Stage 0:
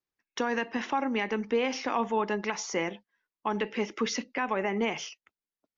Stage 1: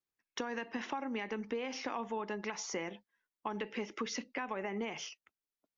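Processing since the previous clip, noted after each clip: compressor, threshold -30 dBFS, peak gain reduction 8 dB; gain -4 dB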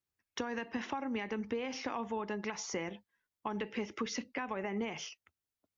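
bell 83 Hz +14.5 dB 1.3 oct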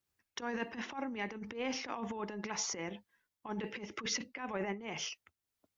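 negative-ratio compressor -39 dBFS, ratio -0.5; tremolo triangle 2 Hz, depth 55%; gain +3.5 dB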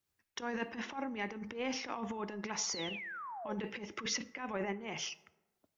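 painted sound fall, 2.63–3.55, 490–6100 Hz -44 dBFS; plate-style reverb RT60 1.2 s, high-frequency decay 0.45×, DRR 17 dB

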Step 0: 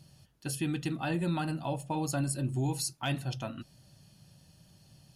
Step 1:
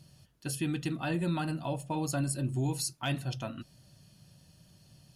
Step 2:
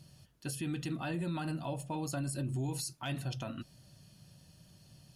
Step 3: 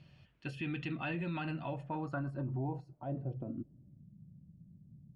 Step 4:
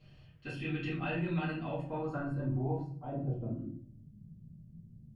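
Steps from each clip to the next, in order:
notch 820 Hz, Q 12
limiter -28.5 dBFS, peak gain reduction 8 dB
low-pass sweep 2500 Hz -> 210 Hz, 1.52–4.11; gain -2 dB
shoebox room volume 42 m³, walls mixed, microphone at 2.1 m; gain -9 dB

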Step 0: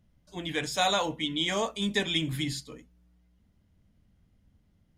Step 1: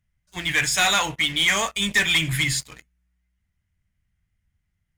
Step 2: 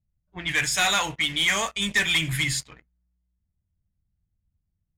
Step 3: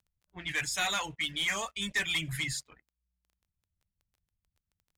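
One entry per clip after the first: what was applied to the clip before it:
graphic EQ 250/500/1000/2000/4000/8000 Hz -12/-11/-3/+9/-5/+5 dB; sample leveller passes 3
low-pass opened by the level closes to 590 Hz, open at -20.5 dBFS; gain -2.5 dB
reverb removal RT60 0.51 s; crackle 11/s -44 dBFS; gain -8 dB

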